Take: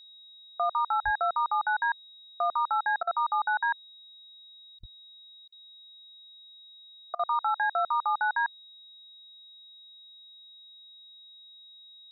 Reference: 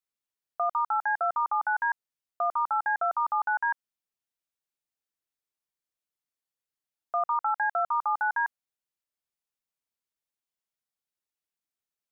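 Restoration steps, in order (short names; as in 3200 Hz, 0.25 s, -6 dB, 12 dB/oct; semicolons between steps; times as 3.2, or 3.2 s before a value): notch 3800 Hz, Q 30; de-plosive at 1.04/4.79; interpolate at 3.03/4.79/5.48/7.15, 41 ms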